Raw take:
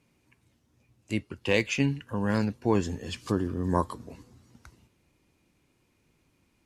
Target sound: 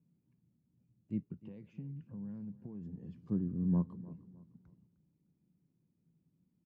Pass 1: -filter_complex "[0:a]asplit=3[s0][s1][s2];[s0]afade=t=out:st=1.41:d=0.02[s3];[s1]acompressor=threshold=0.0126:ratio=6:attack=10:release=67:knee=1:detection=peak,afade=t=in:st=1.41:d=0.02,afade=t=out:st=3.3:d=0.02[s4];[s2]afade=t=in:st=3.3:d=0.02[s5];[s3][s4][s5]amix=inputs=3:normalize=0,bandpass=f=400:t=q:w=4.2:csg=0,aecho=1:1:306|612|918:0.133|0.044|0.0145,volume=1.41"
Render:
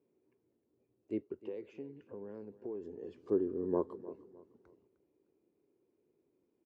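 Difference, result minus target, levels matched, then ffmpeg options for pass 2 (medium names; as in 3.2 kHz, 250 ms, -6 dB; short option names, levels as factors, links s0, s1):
500 Hz band +16.0 dB
-filter_complex "[0:a]asplit=3[s0][s1][s2];[s0]afade=t=out:st=1.41:d=0.02[s3];[s1]acompressor=threshold=0.0126:ratio=6:attack=10:release=67:knee=1:detection=peak,afade=t=in:st=1.41:d=0.02,afade=t=out:st=3.3:d=0.02[s4];[s2]afade=t=in:st=3.3:d=0.02[s5];[s3][s4][s5]amix=inputs=3:normalize=0,bandpass=f=170:t=q:w=4.2:csg=0,aecho=1:1:306|612|918:0.133|0.044|0.0145,volume=1.41"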